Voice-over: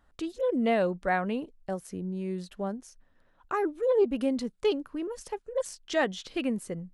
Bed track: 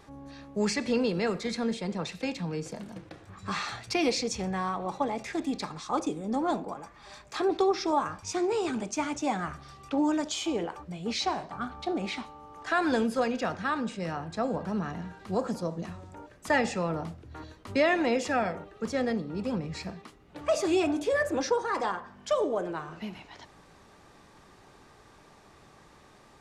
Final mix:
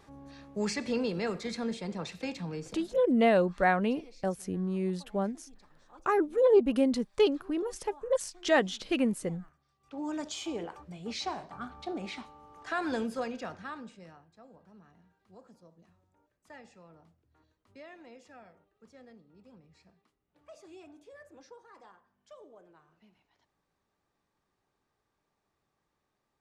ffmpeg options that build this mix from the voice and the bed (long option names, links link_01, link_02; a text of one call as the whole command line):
ffmpeg -i stem1.wav -i stem2.wav -filter_complex "[0:a]adelay=2550,volume=2dB[link_01];[1:a]volume=17.5dB,afade=type=out:start_time=2.53:duration=0.62:silence=0.0668344,afade=type=in:start_time=9.8:duration=0.42:silence=0.0841395,afade=type=out:start_time=13.05:duration=1.22:silence=0.105925[link_02];[link_01][link_02]amix=inputs=2:normalize=0" out.wav